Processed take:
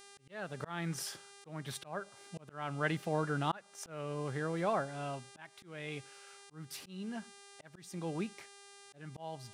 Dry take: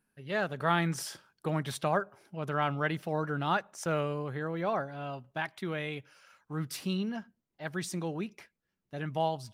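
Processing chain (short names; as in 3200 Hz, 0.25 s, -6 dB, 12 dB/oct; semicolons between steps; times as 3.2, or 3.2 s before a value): buzz 400 Hz, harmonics 26, -55 dBFS -2 dB/oct; auto swell 0.404 s; gain -1.5 dB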